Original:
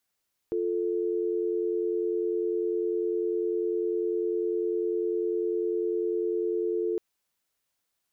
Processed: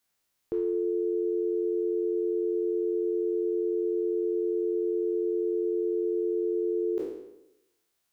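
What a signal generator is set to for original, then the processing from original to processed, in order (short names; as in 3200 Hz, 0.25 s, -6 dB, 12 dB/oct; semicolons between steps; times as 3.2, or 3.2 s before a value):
call progress tone dial tone, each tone -28 dBFS 6.46 s
spectral trails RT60 0.91 s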